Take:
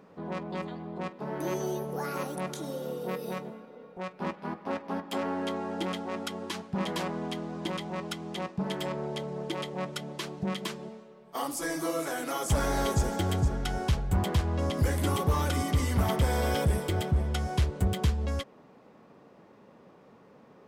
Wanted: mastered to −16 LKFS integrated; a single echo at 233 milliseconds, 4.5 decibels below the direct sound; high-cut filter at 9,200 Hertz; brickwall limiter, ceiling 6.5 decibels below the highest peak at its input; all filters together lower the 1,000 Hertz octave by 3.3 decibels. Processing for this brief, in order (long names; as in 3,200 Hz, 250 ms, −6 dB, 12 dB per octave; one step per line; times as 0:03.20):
low-pass filter 9,200 Hz
parametric band 1,000 Hz −4.5 dB
brickwall limiter −24.5 dBFS
single-tap delay 233 ms −4.5 dB
level +17.5 dB